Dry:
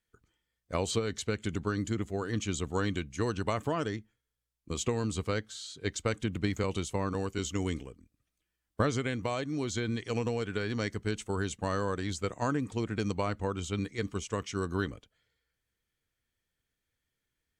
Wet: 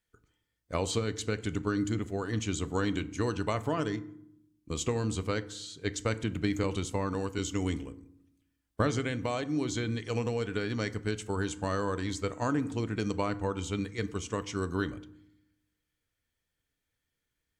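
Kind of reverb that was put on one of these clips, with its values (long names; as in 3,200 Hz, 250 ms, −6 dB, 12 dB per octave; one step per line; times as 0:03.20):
feedback delay network reverb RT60 0.71 s, low-frequency decay 1.55×, high-frequency decay 0.55×, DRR 12.5 dB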